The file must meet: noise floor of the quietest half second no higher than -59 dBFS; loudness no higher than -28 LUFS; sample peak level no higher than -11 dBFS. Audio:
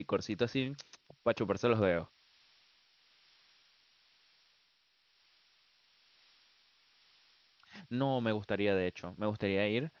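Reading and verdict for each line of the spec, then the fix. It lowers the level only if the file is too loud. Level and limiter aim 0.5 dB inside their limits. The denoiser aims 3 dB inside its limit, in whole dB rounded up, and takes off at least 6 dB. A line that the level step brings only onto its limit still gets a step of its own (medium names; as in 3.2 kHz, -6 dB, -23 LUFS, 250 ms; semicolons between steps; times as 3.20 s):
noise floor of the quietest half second -73 dBFS: pass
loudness -34.0 LUFS: pass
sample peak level -15.5 dBFS: pass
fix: none needed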